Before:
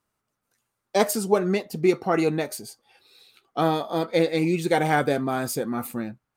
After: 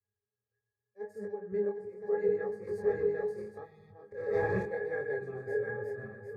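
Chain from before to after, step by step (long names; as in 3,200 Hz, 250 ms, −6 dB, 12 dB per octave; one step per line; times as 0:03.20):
feedback delay that plays each chunk backwards 380 ms, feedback 52%, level −1 dB
mains-hum notches 50/100/150/200/250/300 Hz
0:02.67–0:03.58: leveller curve on the samples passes 3
0:03.63–0:03.91: gain on a spectral selection 220–1,800 Hz −22 dB
0:04.11–0:04.63: leveller curve on the samples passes 5
volume swells 313 ms
phaser with its sweep stopped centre 900 Hz, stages 6
resonances in every octave G#, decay 0.23 s
chorus effect 0.79 Hz, delay 20 ms, depth 6.5 ms
convolution reverb RT60 1.7 s, pre-delay 52 ms, DRR 15.5 dB
level +8.5 dB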